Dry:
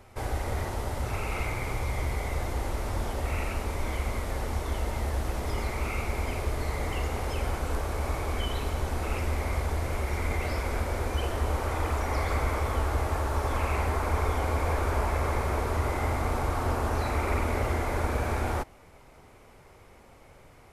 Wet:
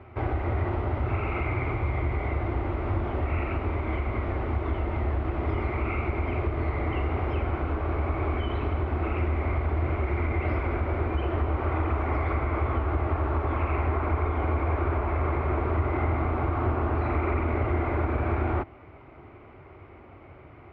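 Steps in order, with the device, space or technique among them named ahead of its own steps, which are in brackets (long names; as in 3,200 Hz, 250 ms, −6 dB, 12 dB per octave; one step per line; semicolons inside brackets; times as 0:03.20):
bass amplifier (downward compressor, threshold −28 dBFS, peak gain reduction 7 dB; loudspeaker in its box 64–2,300 Hz, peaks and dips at 91 Hz +4 dB, 190 Hz −8 dB, 340 Hz +6 dB, 500 Hz −8 dB, 890 Hz −5 dB, 1,700 Hz −7 dB)
level +7.5 dB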